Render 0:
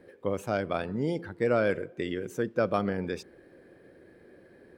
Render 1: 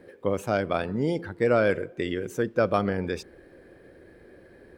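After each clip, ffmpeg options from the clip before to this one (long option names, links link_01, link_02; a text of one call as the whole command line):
ffmpeg -i in.wav -af "asubboost=boost=3:cutoff=87,volume=4dB" out.wav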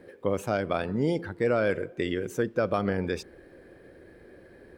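ffmpeg -i in.wav -af "alimiter=limit=-14dB:level=0:latency=1:release=134" out.wav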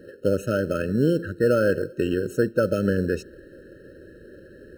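ffmpeg -i in.wav -filter_complex "[0:a]asplit=2[link_01][link_02];[link_02]acrusher=samples=23:mix=1:aa=0.000001,volume=-11.5dB[link_03];[link_01][link_03]amix=inputs=2:normalize=0,afftfilt=real='re*eq(mod(floor(b*sr/1024/630),2),0)':imag='im*eq(mod(floor(b*sr/1024/630),2),0)':win_size=1024:overlap=0.75,volume=4dB" out.wav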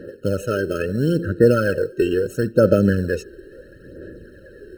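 ffmpeg -i in.wav -af "aphaser=in_gain=1:out_gain=1:delay=2.6:decay=0.56:speed=0.74:type=sinusoidal,volume=2dB" out.wav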